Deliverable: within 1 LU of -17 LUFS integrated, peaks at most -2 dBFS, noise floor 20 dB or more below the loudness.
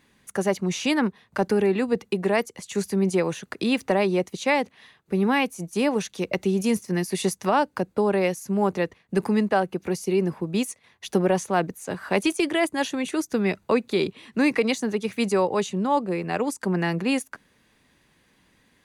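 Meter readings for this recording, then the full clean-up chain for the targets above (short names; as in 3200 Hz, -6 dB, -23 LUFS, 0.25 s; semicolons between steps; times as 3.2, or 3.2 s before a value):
loudness -25.0 LUFS; peak -10.5 dBFS; loudness target -17.0 LUFS
-> gain +8 dB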